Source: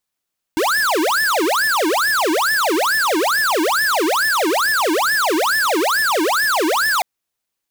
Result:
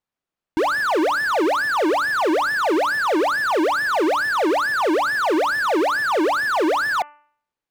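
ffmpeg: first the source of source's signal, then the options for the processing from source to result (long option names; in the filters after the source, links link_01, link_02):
-f lavfi -i "aevalsrc='0.141*(2*lt(mod((1032*t-728/(2*PI*2.3)*sin(2*PI*2.3*t)),1),0.5)-1)':duration=6.45:sample_rate=44100"
-af "lowpass=frequency=1400:poles=1,bandreject=frequency=294.8:width_type=h:width=4,bandreject=frequency=589.6:width_type=h:width=4,bandreject=frequency=884.4:width_type=h:width=4,bandreject=frequency=1179.2:width_type=h:width=4,bandreject=frequency=1474:width_type=h:width=4,bandreject=frequency=1768.8:width_type=h:width=4,bandreject=frequency=2063.6:width_type=h:width=4,bandreject=frequency=2358.4:width_type=h:width=4,bandreject=frequency=2653.2:width_type=h:width=4,bandreject=frequency=2948:width_type=h:width=4"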